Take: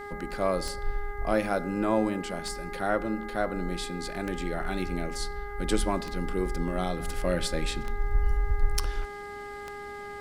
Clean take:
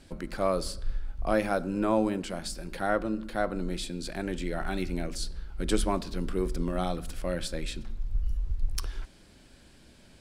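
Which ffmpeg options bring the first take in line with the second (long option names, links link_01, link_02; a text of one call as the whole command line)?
ffmpeg -i in.wav -af "adeclick=threshold=4,bandreject=frequency=408.8:width_type=h:width=4,bandreject=frequency=817.6:width_type=h:width=4,bandreject=frequency=1226.4:width_type=h:width=4,bandreject=frequency=1635.2:width_type=h:width=4,bandreject=frequency=2044:width_type=h:width=4,agate=range=-21dB:threshold=-31dB,asetnsamples=nb_out_samples=441:pad=0,asendcmd='7 volume volume -4dB',volume=0dB" out.wav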